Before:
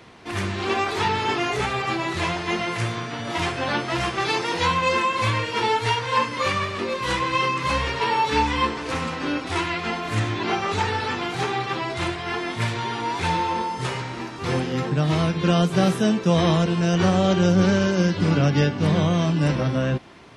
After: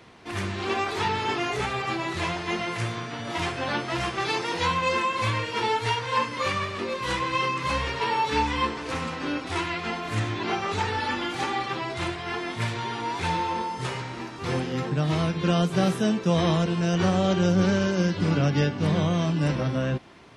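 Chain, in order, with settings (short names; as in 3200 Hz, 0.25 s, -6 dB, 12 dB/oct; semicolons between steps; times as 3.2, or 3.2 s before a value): 10.97–11.68 comb 3.5 ms; gain -3.5 dB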